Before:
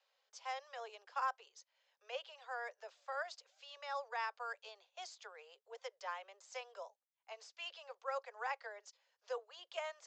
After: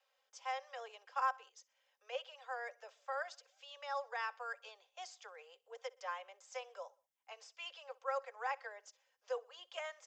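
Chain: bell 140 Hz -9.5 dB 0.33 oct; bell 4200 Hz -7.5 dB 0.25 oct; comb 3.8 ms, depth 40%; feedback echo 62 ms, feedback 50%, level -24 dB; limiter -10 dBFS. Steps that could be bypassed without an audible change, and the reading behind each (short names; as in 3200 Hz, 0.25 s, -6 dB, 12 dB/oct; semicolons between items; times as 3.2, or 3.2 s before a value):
bell 140 Hz: input band starts at 360 Hz; limiter -10 dBFS: input peak -25.0 dBFS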